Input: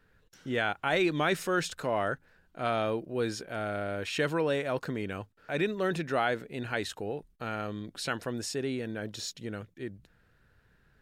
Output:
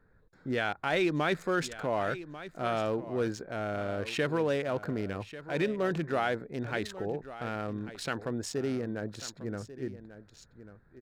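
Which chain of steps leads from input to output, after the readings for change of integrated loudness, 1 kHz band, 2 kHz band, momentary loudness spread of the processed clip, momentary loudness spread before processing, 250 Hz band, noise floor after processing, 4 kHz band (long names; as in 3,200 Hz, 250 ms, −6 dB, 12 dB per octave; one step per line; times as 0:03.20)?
−0.5 dB, −1.0 dB, −2.0 dB, 10 LU, 10 LU, +0.5 dB, −62 dBFS, −3.0 dB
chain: adaptive Wiener filter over 15 samples
in parallel at −3 dB: brickwall limiter −26 dBFS, peak gain reduction 10.5 dB
on the sum: single-tap delay 1,142 ms −14.5 dB
level −3 dB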